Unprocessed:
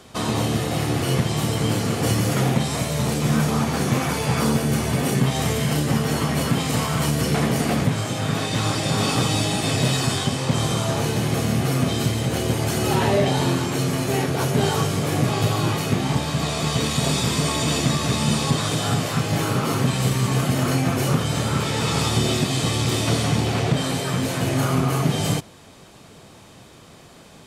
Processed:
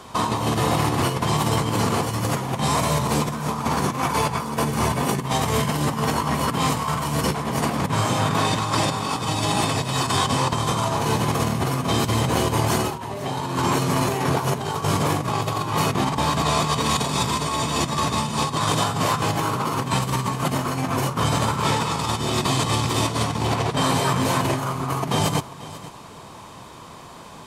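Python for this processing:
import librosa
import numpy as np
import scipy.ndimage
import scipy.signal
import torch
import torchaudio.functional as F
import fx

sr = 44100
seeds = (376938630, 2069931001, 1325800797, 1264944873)

y = fx.peak_eq(x, sr, hz=1000.0, db=13.0, octaves=0.47)
y = fx.over_compress(y, sr, threshold_db=-22.0, ratio=-0.5)
y = y + 10.0 ** (-17.0 / 20.0) * np.pad(y, (int(490 * sr / 1000.0), 0))[:len(y)]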